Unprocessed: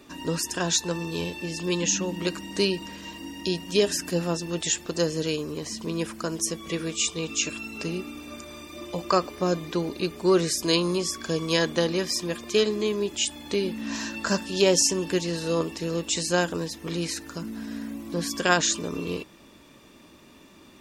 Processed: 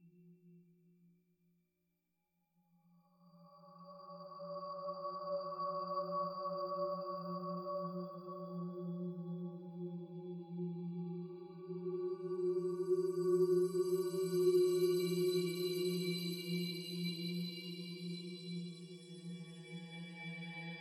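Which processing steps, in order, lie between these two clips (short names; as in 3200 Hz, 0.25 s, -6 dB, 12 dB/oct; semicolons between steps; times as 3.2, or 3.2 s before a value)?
per-bin expansion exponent 3; metallic resonator 170 Hz, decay 0.53 s, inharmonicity 0.03; Paulstretch 6.4×, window 1.00 s, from 8.18; gain +2.5 dB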